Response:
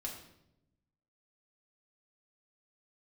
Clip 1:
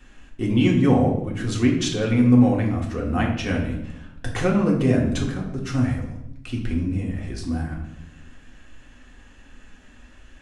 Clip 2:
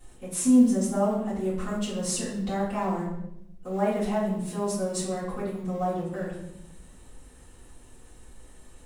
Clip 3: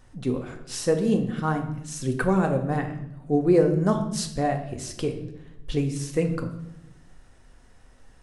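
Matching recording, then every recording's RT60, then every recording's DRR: 1; 0.85, 0.80, 0.85 s; -2.0, -11.0, 4.0 dB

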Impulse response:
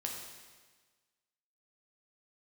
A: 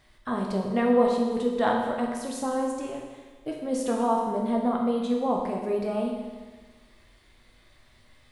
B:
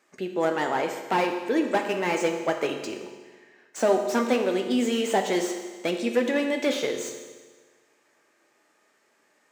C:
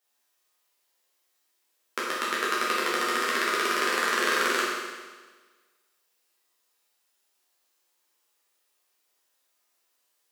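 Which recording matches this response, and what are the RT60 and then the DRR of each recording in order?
A; 1.4, 1.4, 1.4 s; -0.5, 4.0, -8.0 dB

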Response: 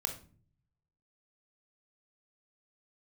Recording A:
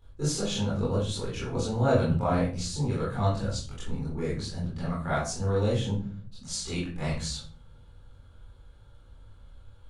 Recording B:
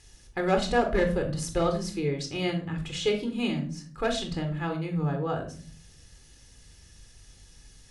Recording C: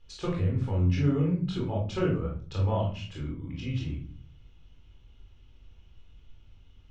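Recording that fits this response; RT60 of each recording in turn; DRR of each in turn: B; 0.45, 0.45, 0.45 s; -9.0, 4.5, -3.5 dB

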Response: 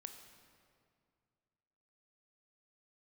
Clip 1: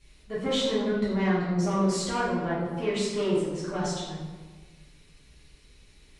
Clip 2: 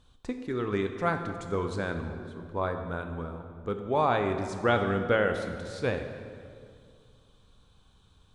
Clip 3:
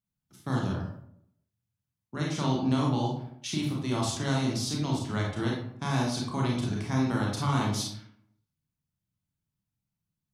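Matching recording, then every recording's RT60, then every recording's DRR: 2; 1.4, 2.2, 0.70 s; -11.0, 6.0, -3.0 dB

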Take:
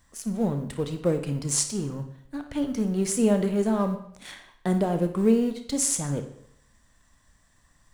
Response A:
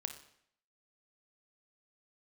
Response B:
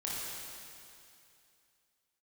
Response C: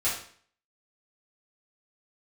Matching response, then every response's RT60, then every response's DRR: A; 0.65, 2.6, 0.50 s; 7.0, -6.5, -11.0 dB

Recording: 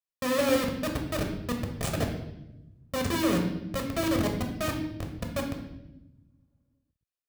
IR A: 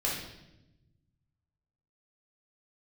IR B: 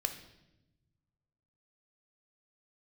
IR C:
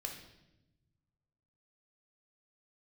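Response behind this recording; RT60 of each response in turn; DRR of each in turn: C; 0.95, 0.95, 0.95 s; -5.0, 6.5, 2.0 dB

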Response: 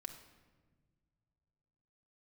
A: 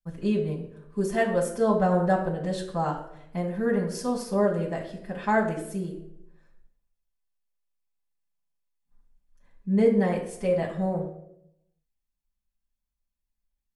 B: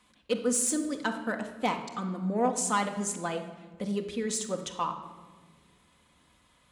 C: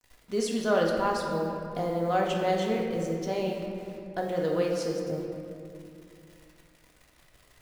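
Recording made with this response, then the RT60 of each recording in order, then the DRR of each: B; 0.75, 1.5, 2.6 s; -7.5, 3.5, -1.5 dB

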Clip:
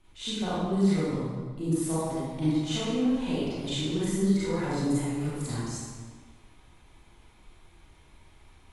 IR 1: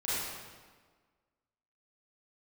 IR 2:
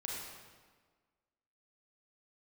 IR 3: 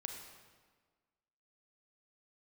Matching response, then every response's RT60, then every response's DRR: 1; 1.5, 1.5, 1.5 s; -11.5, -3.5, 3.0 dB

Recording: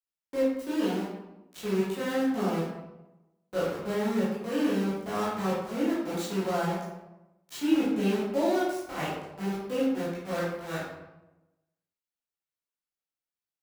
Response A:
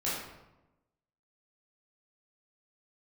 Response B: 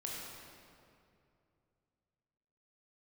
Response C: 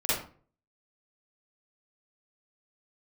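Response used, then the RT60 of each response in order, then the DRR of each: A; 1.0, 2.6, 0.45 s; -9.5, -4.0, -11.5 dB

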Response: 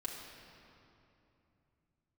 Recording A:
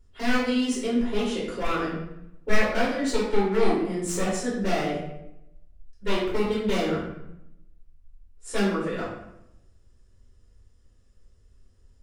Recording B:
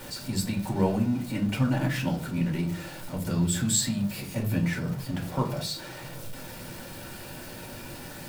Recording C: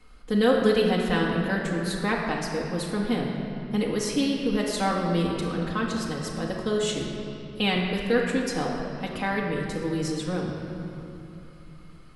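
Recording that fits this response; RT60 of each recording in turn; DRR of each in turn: C; 0.80, 0.45, 2.9 s; -9.0, -1.0, -3.0 dB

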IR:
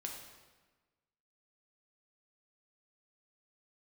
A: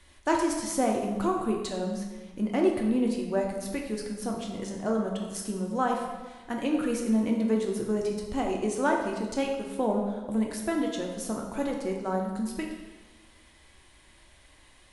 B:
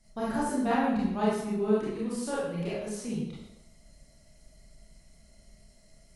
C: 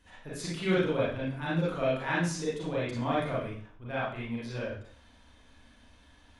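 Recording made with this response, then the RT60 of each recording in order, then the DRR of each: A; 1.3, 0.85, 0.50 s; 0.0, -8.5, -8.5 dB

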